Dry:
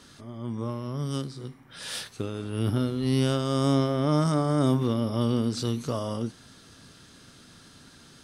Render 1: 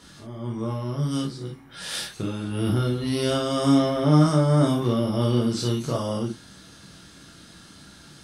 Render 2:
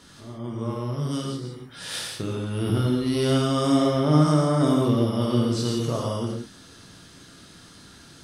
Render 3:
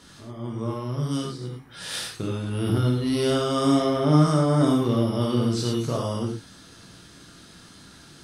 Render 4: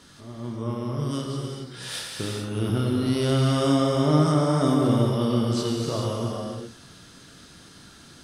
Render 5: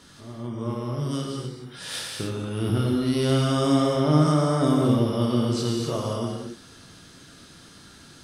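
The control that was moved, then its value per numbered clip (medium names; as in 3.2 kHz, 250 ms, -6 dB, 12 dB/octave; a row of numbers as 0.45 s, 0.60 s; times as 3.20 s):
gated-style reverb, gate: 80 ms, 200 ms, 130 ms, 460 ms, 300 ms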